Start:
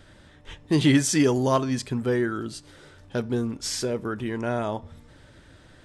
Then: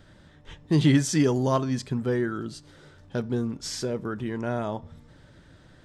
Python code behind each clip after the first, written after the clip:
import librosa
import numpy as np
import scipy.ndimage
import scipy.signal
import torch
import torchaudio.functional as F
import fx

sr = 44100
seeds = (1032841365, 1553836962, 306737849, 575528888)

y = fx.graphic_eq_15(x, sr, hz=(160, 2500, 10000), db=(6, -3, -6))
y = F.gain(torch.from_numpy(y), -2.5).numpy()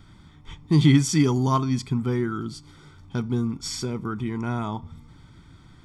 y = x + 0.77 * np.pad(x, (int(0.9 * sr / 1000.0), 0))[:len(x)]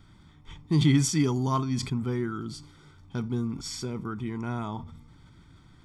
y = fx.sustainer(x, sr, db_per_s=82.0)
y = F.gain(torch.from_numpy(y), -5.0).numpy()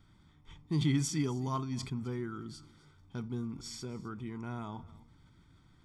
y = x + 10.0 ** (-21.0 / 20.0) * np.pad(x, (int(260 * sr / 1000.0), 0))[:len(x)]
y = F.gain(torch.from_numpy(y), -8.0).numpy()